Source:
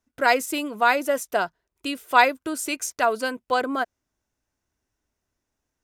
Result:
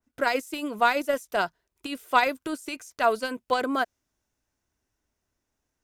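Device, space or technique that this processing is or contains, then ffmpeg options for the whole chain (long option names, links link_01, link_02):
de-esser from a sidechain: -filter_complex "[0:a]asplit=2[link_01][link_02];[link_02]highpass=frequency=6700:width=0.5412,highpass=frequency=6700:width=1.3066,apad=whole_len=257422[link_03];[link_01][link_03]sidechaincompress=threshold=-48dB:ratio=5:attack=0.78:release=26,adynamicequalizer=threshold=0.0224:dfrequency=2300:dqfactor=0.7:tfrequency=2300:tqfactor=0.7:attack=5:release=100:ratio=0.375:range=2:mode=boostabove:tftype=highshelf"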